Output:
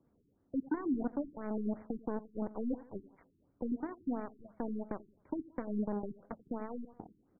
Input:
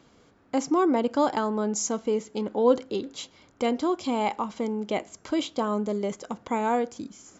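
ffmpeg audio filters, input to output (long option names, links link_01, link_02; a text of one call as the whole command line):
ffmpeg -i in.wav -filter_complex "[0:a]tiltshelf=frequency=860:gain=8.5,acrossover=split=260[link_01][link_02];[link_02]acompressor=threshold=-35dB:ratio=4[link_03];[link_01][link_03]amix=inputs=2:normalize=0,aexciter=amount=5.5:drive=2.7:freq=3100,aeval=exprs='0.178*(cos(1*acos(clip(val(0)/0.178,-1,1)))-cos(1*PI/2))+0.0562*(cos(3*acos(clip(val(0)/0.178,-1,1)))-cos(3*PI/2))+0.00447*(cos(7*acos(clip(val(0)/0.178,-1,1)))-cos(7*PI/2))':channel_layout=same,asoftclip=type=tanh:threshold=-23.5dB,asplit=2[link_04][link_05];[link_05]adelay=87,lowpass=frequency=3800:poles=1,volume=-17.5dB,asplit=2[link_06][link_07];[link_07]adelay=87,lowpass=frequency=3800:poles=1,volume=0.36,asplit=2[link_08][link_09];[link_09]adelay=87,lowpass=frequency=3800:poles=1,volume=0.36[link_10];[link_04][link_06][link_08][link_10]amix=inputs=4:normalize=0,afftfilt=real='re*lt(b*sr/1024,400*pow(2400/400,0.5+0.5*sin(2*PI*2.9*pts/sr)))':imag='im*lt(b*sr/1024,400*pow(2400/400,0.5+0.5*sin(2*PI*2.9*pts/sr)))':win_size=1024:overlap=0.75,volume=-1dB" out.wav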